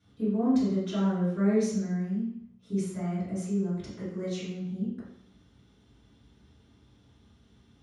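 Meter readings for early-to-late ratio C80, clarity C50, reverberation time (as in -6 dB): 4.5 dB, 0.5 dB, 0.70 s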